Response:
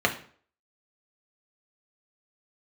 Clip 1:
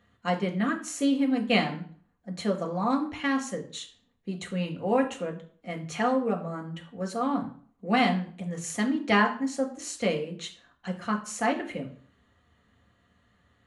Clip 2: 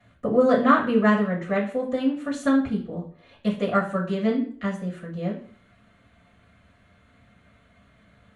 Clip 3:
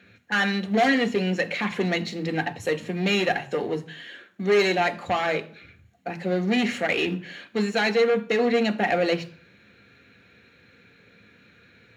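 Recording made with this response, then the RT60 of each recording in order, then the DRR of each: 1; 0.50, 0.50, 0.50 s; 1.0, -8.5, 8.0 dB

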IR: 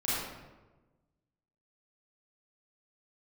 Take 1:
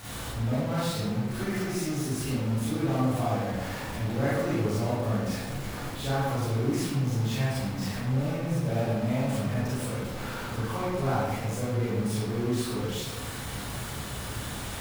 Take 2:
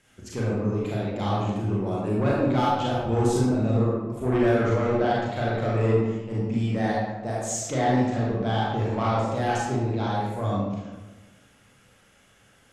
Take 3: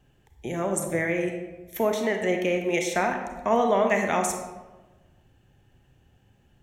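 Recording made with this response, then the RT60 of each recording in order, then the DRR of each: 1; 1.2, 1.2, 1.2 s; -10.5, -6.0, 4.0 dB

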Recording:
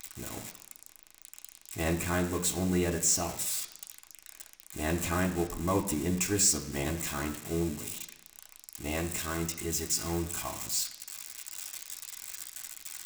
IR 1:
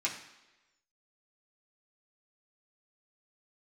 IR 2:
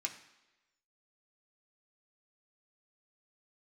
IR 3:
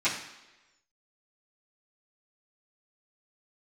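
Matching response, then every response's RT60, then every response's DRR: 2; 1.1, 1.1, 1.1 s; -5.0, 1.5, -14.0 dB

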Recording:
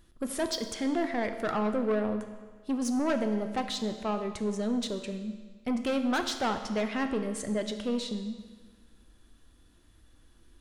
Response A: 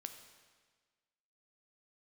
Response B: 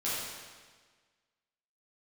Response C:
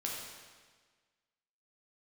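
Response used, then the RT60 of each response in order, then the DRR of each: A; 1.5, 1.5, 1.5 s; 6.5, -10.0, -3.0 dB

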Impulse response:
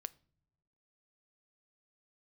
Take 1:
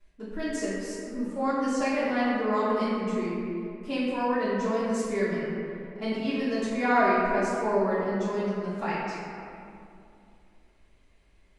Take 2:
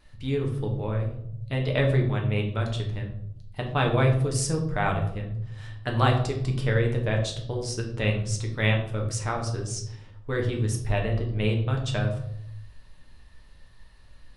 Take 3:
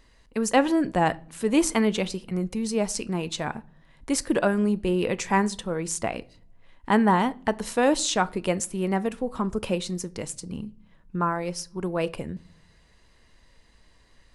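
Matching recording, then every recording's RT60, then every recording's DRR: 3; 2.5 s, 0.75 s, not exponential; -12.5, 0.5, 15.0 dB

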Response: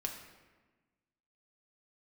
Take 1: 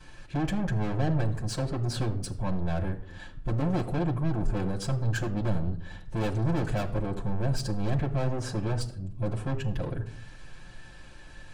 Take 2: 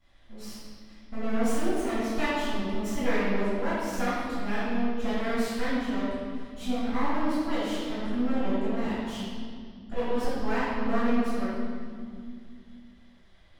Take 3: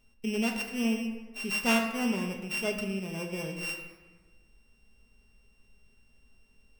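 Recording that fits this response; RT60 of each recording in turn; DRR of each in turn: 3; not exponential, 2.3 s, 1.3 s; -10.5, -18.5, 1.5 dB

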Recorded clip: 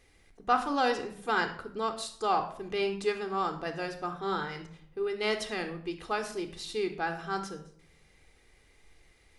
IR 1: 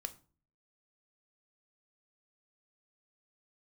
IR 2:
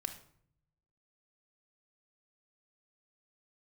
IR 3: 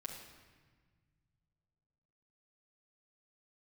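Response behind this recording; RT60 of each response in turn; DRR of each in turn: 2; 0.40, 0.65, 1.5 s; 9.0, 7.5, -1.0 dB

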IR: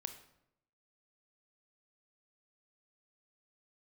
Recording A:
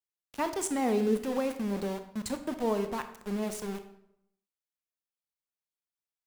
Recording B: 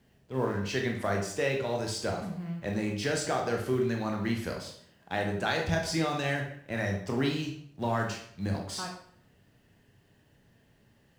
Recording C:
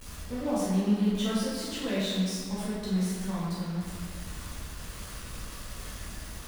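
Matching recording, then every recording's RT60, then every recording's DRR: A; 0.80, 0.60, 1.9 s; 8.0, 1.5, -9.5 dB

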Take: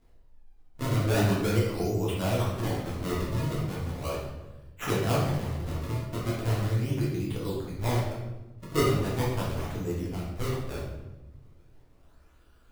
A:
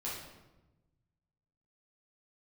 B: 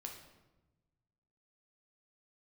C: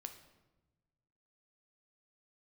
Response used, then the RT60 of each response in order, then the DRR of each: A; 1.1, 1.1, 1.1 s; -7.0, 1.5, 6.5 dB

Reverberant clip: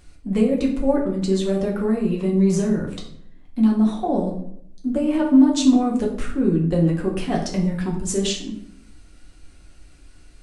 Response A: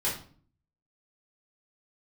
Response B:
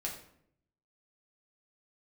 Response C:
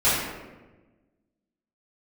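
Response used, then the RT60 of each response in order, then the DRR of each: B; 0.45, 0.70, 1.2 s; -7.0, -2.5, -14.0 dB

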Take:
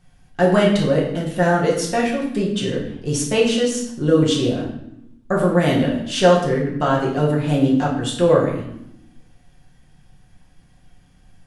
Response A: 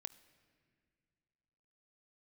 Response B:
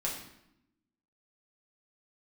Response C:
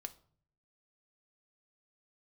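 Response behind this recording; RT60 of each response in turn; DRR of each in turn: B; 2.3, 0.80, 0.55 s; 14.0, -4.0, 8.0 dB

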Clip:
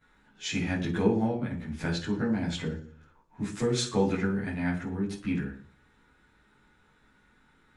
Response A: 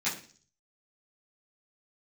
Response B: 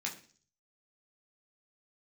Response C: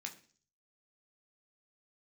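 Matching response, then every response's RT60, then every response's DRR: A; 0.45, 0.45, 0.45 s; -12.5, -2.5, 1.5 dB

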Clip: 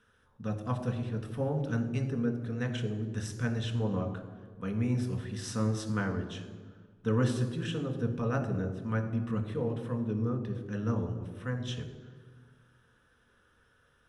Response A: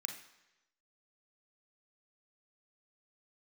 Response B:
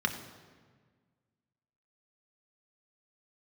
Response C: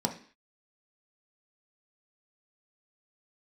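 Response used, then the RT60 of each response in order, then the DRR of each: B; 1.0, 1.6, 0.45 s; 3.5, 4.0, 2.5 dB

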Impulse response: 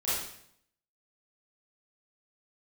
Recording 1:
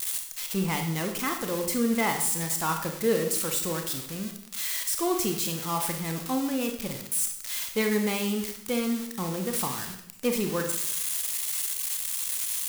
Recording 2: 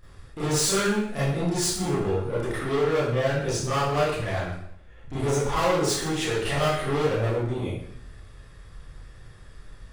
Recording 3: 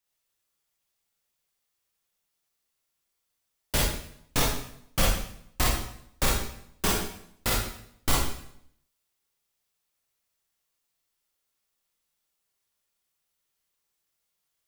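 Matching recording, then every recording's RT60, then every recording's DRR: 2; 0.65, 0.65, 0.65 s; 4.0, -12.0, -4.0 dB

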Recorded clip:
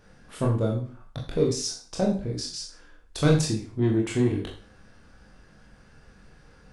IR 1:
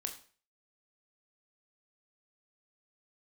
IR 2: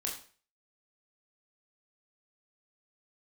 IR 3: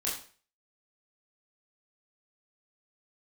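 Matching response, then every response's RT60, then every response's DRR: 2; 0.45, 0.40, 0.40 s; 4.0, -2.0, -6.0 dB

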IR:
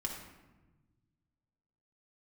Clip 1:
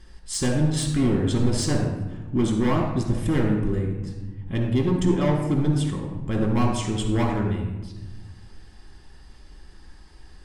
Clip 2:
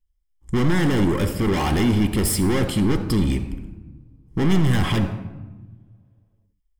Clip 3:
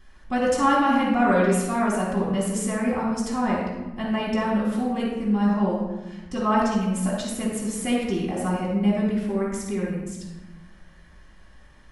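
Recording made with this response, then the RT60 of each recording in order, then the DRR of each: 1; 1.2, 1.2, 1.2 s; -0.5, 6.0, -6.5 dB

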